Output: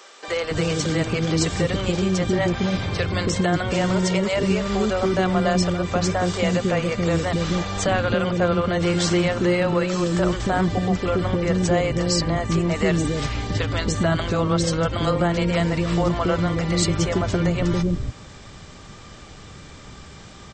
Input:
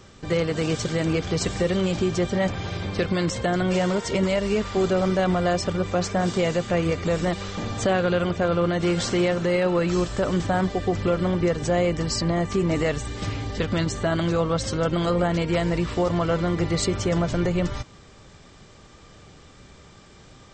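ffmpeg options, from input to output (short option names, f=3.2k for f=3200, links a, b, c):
-filter_complex "[0:a]asplit=2[a][b];[b]acompressor=threshold=-30dB:ratio=6,volume=2.5dB[c];[a][c]amix=inputs=2:normalize=0,acrossover=split=450[d][e];[d]adelay=280[f];[f][e]amix=inputs=2:normalize=0"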